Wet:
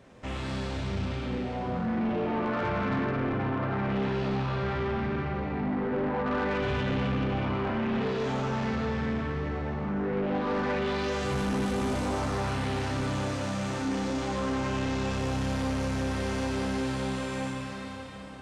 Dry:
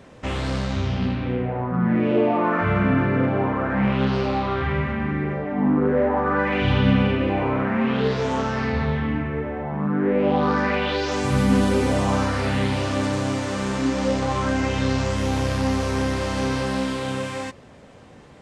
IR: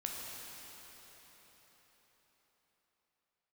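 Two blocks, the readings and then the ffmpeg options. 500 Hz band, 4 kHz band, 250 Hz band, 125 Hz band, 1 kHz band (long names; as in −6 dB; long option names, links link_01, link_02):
−7.5 dB, −7.0 dB, −8.0 dB, −7.5 dB, −7.0 dB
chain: -filter_complex "[1:a]atrim=start_sample=2205[link_01];[0:a][link_01]afir=irnorm=-1:irlink=0,asoftclip=type=tanh:threshold=-19dB,volume=-5.5dB"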